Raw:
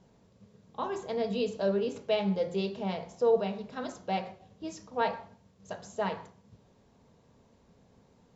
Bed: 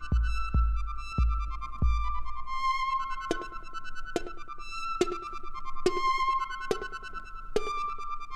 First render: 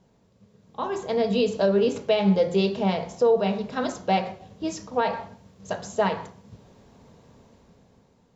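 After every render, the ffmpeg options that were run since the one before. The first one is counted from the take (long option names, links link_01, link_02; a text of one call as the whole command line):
ffmpeg -i in.wav -af "alimiter=limit=-22dB:level=0:latency=1:release=158,dynaudnorm=framelen=280:gausssize=7:maxgain=10dB" out.wav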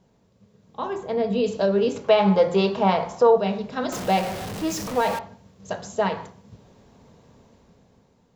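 ffmpeg -i in.wav -filter_complex "[0:a]asettb=1/sr,asplit=3[link_01][link_02][link_03];[link_01]atrim=end=0.934[link_04];[link_02]atrim=start=0.93:end=1.44,asetpts=PTS-STARTPTS,afade=type=in:duration=0.004:curve=qsin,afade=type=out:start_time=0.506:duration=0.004:curve=qsin,equalizer=frequency=5700:width_type=o:width=2:gain=-9[link_05];[link_03]atrim=start=1.436[link_06];[link_04][link_05]acrossfade=duration=0.004:curve1=hsin:curve2=qsin[link_07];[link_07][link_06]acrossfade=duration=0.004:curve1=qsin:curve2=hsin,asettb=1/sr,asplit=3[link_08][link_09][link_10];[link_08]atrim=end=2.044[link_11];[link_09]atrim=start=2.04:end=3.38,asetpts=PTS-STARTPTS,afade=type=in:duration=0.004:curve=qsin,afade=type=out:start_time=1.336:duration=0.004:curve=qsin,equalizer=frequency=1100:width_type=o:width=1.4:gain=12[link_12];[link_10]atrim=start=3.376[link_13];[link_11][link_12]acrossfade=duration=0.004:curve1=hsin:curve2=qsin[link_14];[link_14][link_13]acrossfade=duration=0.004:curve1=qsin:curve2=hsin,asettb=1/sr,asplit=3[link_15][link_16][link_17];[link_15]atrim=end=3.924[link_18];[link_16]atrim=start=3.92:end=5.19,asetpts=PTS-STARTPTS,afade=type=in:duration=0.004:curve=qsin,afade=type=out:start_time=1.266:duration=0.004:curve=qsin,aeval=exprs='val(0)+0.5*0.0422*sgn(val(0))':channel_layout=same[link_19];[link_17]atrim=start=5.186[link_20];[link_18][link_19]acrossfade=duration=0.004:curve1=hsin:curve2=qsin[link_21];[link_21][link_20]acrossfade=duration=0.004:curve1=qsin:curve2=hsin" out.wav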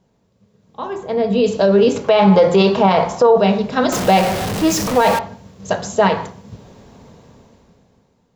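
ffmpeg -i in.wav -af "alimiter=limit=-14.5dB:level=0:latency=1:release=19,dynaudnorm=framelen=290:gausssize=9:maxgain=11.5dB" out.wav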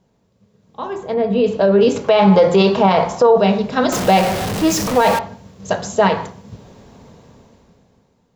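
ffmpeg -i in.wav -filter_complex "[0:a]asettb=1/sr,asplit=3[link_01][link_02][link_03];[link_01]atrim=end=1.144[link_04];[link_02]atrim=start=1.14:end=1.81,asetpts=PTS-STARTPTS,afade=type=in:duration=0.004:curve=qsin,afade=type=out:start_time=0.666:duration=0.004:curve=qsin,bass=frequency=250:gain=-1,treble=frequency=4000:gain=-13[link_05];[link_03]atrim=start=1.806[link_06];[link_04][link_05]acrossfade=duration=0.004:curve1=hsin:curve2=qsin[link_07];[link_07][link_06]acrossfade=duration=0.004:curve1=qsin:curve2=hsin" out.wav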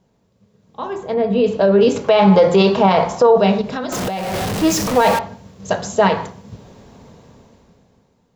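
ffmpeg -i in.wav -filter_complex "[0:a]asettb=1/sr,asplit=3[link_01][link_02][link_03];[link_01]atrim=end=3.614[link_04];[link_02]atrim=start=3.61:end=4.34,asetpts=PTS-STARTPTS,afade=type=in:duration=0.004:curve=qsin,afade=type=out:start_time=0.726:duration=0.004:curve=qsin,acompressor=threshold=-20dB:ratio=10:attack=3.2:release=140:knee=1:detection=peak[link_05];[link_03]atrim=start=4.336[link_06];[link_04][link_05]acrossfade=duration=0.004:curve1=hsin:curve2=qsin[link_07];[link_07][link_06]acrossfade=duration=0.004:curve1=qsin:curve2=hsin" out.wav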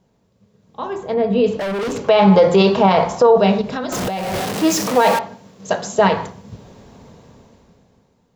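ffmpeg -i in.wav -filter_complex "[0:a]asettb=1/sr,asplit=3[link_01][link_02][link_03];[link_01]atrim=end=1.574[link_04];[link_02]atrim=start=1.57:end=2.03,asetpts=PTS-STARTPTS,afade=type=in:duration=0.004:curve=qsin,afade=type=out:start_time=0.456:duration=0.004:curve=qsin,asoftclip=type=hard:threshold=-21dB[link_05];[link_03]atrim=start=2.026[link_06];[link_04][link_05]acrossfade=duration=0.004:curve1=hsin:curve2=qsin[link_07];[link_07][link_06]acrossfade=duration=0.004:curve1=qsin:curve2=hsin,asettb=1/sr,asplit=3[link_08][link_09][link_10];[link_08]atrim=end=4.404[link_11];[link_09]atrim=start=4.4:end=5.99,asetpts=PTS-STARTPTS,afade=type=in:duration=0.004:curve=qsin,afade=type=out:start_time=1.586:duration=0.004:curve=qsin,highpass=180[link_12];[link_10]atrim=start=5.986[link_13];[link_11][link_12]acrossfade=duration=0.004:curve1=hsin:curve2=qsin[link_14];[link_14][link_13]acrossfade=duration=0.004:curve1=qsin:curve2=hsin" out.wav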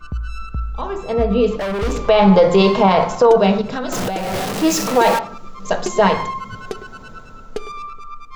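ffmpeg -i in.wav -i bed.wav -filter_complex "[1:a]volume=1.5dB[link_01];[0:a][link_01]amix=inputs=2:normalize=0" out.wav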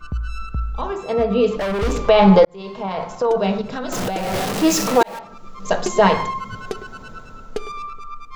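ffmpeg -i in.wav -filter_complex "[0:a]asettb=1/sr,asplit=3[link_01][link_02][link_03];[link_01]atrim=end=0.924[link_04];[link_02]atrim=start=0.92:end=1.56,asetpts=PTS-STARTPTS,afade=type=in:duration=0.004:curve=qsin,afade=type=out:start_time=0.636:duration=0.004:curve=qsin,highpass=frequency=190:poles=1[link_05];[link_03]atrim=start=1.556[link_06];[link_04][link_05]acrossfade=duration=0.004:curve1=hsin:curve2=qsin[link_07];[link_07][link_06]acrossfade=duration=0.004:curve1=qsin:curve2=hsin,asplit=3[link_08][link_09][link_10];[link_08]atrim=end=2.45,asetpts=PTS-STARTPTS,afade=type=out:start_time=2.446:duration=0.004:curve=hsin[link_11];[link_09]atrim=start=2.45:end=5.03,asetpts=PTS-STARTPTS,afade=type=in:duration=1.92,afade=type=out:start_time=2.576:duration=0.004:curve=hsin[link_12];[link_10]atrim=start=5.03,asetpts=PTS-STARTPTS,afade=type=in:duration=0.65[link_13];[link_11][link_12][link_13]concat=n=3:v=0:a=1" out.wav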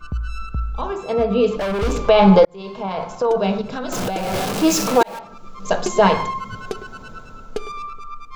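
ffmpeg -i in.wav -af "bandreject=frequency=1900:width=12" out.wav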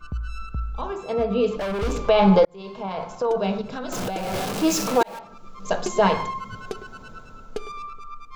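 ffmpeg -i in.wav -af "volume=-4.5dB" out.wav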